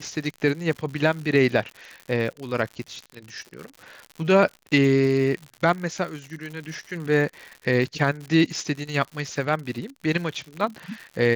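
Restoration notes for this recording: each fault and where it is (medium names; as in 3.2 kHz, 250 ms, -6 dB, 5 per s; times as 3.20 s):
crackle 110 per s -32 dBFS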